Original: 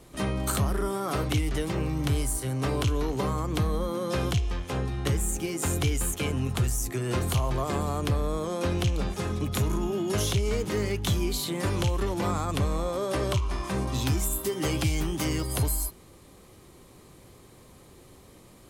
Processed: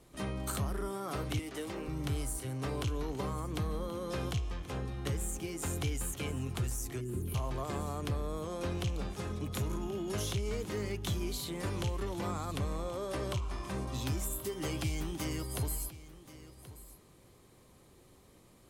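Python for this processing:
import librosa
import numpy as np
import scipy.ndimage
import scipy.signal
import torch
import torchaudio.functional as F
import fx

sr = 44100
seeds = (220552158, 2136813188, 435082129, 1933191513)

p1 = fx.highpass(x, sr, hz=220.0, slope=24, at=(1.39, 1.88))
p2 = fx.spec_box(p1, sr, start_s=7.01, length_s=0.33, low_hz=440.0, high_hz=9400.0, gain_db=-19)
p3 = p2 + fx.echo_single(p2, sr, ms=1079, db=-16.5, dry=0)
y = p3 * 10.0 ** (-8.5 / 20.0)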